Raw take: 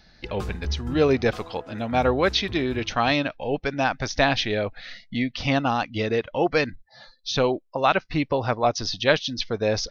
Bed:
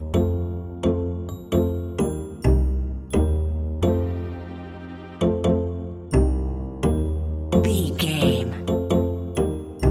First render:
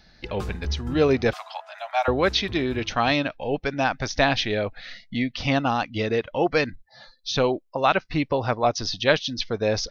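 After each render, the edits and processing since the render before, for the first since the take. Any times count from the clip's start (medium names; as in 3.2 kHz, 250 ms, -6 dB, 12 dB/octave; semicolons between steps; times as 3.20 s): 1.33–2.08 s: steep high-pass 610 Hz 96 dB/octave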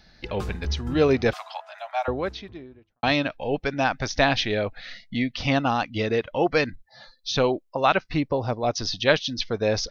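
1.43–3.03 s: studio fade out; 8.19–8.67 s: peaking EQ 3.3 kHz -> 1.3 kHz -11.5 dB 1.6 oct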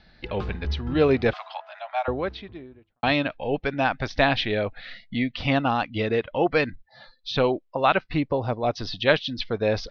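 low-pass 4.1 kHz 24 dB/octave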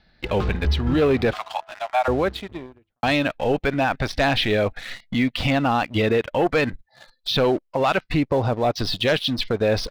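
waveshaping leveller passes 2; peak limiter -12.5 dBFS, peak gain reduction 7.5 dB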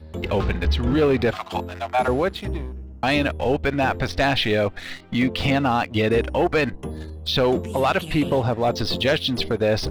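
add bed -11 dB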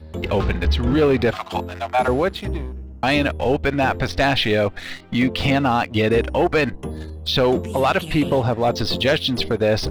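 trim +2 dB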